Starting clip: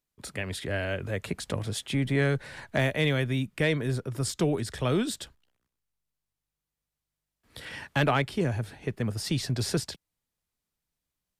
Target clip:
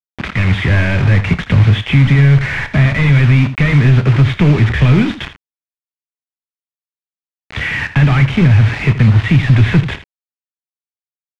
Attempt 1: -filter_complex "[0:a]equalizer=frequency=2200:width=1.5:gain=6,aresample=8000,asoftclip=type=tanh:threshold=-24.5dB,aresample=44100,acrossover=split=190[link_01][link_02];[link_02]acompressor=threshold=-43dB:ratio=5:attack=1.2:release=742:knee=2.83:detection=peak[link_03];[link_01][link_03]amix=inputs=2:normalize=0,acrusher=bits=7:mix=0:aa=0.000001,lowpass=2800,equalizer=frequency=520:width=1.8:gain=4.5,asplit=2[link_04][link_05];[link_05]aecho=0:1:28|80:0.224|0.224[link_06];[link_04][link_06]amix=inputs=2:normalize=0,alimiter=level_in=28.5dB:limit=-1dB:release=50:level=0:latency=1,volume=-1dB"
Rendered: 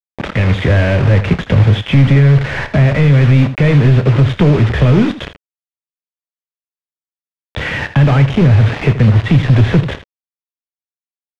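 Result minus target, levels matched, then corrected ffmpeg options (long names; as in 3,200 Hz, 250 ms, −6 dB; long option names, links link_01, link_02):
500 Hz band +5.5 dB; 2,000 Hz band −3.5 dB
-filter_complex "[0:a]equalizer=frequency=2200:width=1.5:gain=15.5,aresample=8000,asoftclip=type=tanh:threshold=-24.5dB,aresample=44100,acrossover=split=190[link_01][link_02];[link_02]acompressor=threshold=-43dB:ratio=5:attack=1.2:release=742:knee=2.83:detection=peak[link_03];[link_01][link_03]amix=inputs=2:normalize=0,acrusher=bits=7:mix=0:aa=0.000001,lowpass=2800,equalizer=frequency=520:width=1.8:gain=-3,asplit=2[link_04][link_05];[link_05]aecho=0:1:28|80:0.224|0.224[link_06];[link_04][link_06]amix=inputs=2:normalize=0,alimiter=level_in=28.5dB:limit=-1dB:release=50:level=0:latency=1,volume=-1dB"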